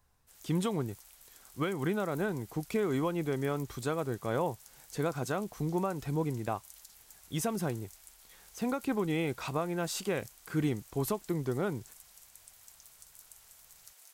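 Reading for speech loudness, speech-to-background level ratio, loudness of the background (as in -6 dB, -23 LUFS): -34.0 LUFS, 19.5 dB, -53.5 LUFS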